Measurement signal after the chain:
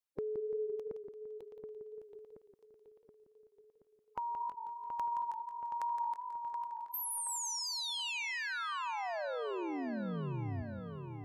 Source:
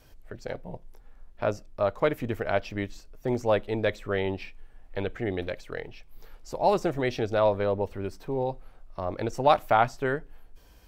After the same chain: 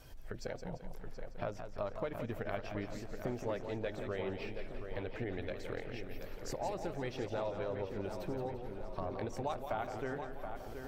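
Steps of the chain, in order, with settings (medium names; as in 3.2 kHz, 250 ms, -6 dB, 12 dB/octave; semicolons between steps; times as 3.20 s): coarse spectral quantiser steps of 15 dB; compression 4:1, threshold -40 dBFS; on a send: filtered feedback delay 726 ms, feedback 58%, low-pass 3.2 kHz, level -7.5 dB; on the sum: modulated delay 171 ms, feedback 46%, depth 98 cents, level -8.5 dB; trim +1 dB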